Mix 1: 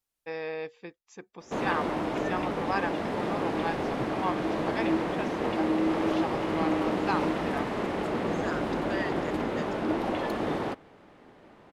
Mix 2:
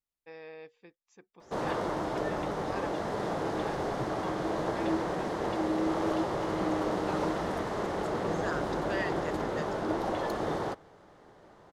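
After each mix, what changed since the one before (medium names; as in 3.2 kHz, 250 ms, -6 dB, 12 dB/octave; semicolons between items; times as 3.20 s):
first voice -11.5 dB; background: add fifteen-band graphic EQ 250 Hz -8 dB, 2.5 kHz -9 dB, 6.3 kHz +4 dB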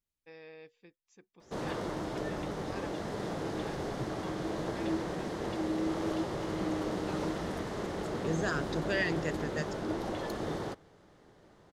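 second voice +7.5 dB; master: add peaking EQ 880 Hz -7.5 dB 2.1 oct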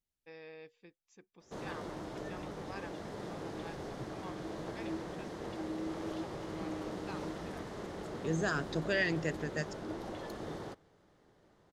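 background -6.5 dB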